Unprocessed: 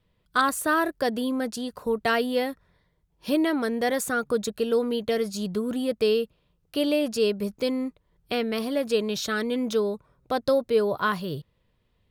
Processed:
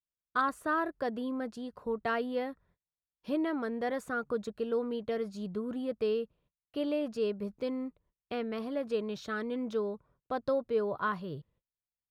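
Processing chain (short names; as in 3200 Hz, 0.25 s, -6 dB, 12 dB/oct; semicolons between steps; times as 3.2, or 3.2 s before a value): LPF 1600 Hz 6 dB/oct; gate -57 dBFS, range -30 dB; dynamic EQ 1200 Hz, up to +4 dB, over -43 dBFS, Q 1.6; gain -8 dB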